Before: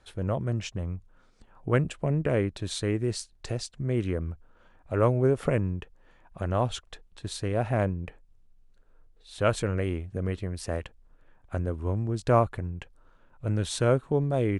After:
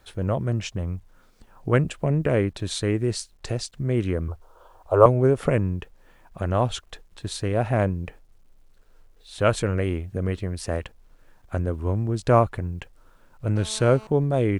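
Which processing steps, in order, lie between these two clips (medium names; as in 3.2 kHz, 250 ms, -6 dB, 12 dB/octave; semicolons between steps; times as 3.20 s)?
4.28–5.06 s: FFT filter 110 Hz 0 dB, 160 Hz -27 dB, 380 Hz +5 dB, 1.1 kHz +11 dB, 2 kHz -15 dB, 3.2 kHz 0 dB; bit crusher 12-bit; 13.56–14.07 s: mobile phone buzz -48 dBFS; trim +4 dB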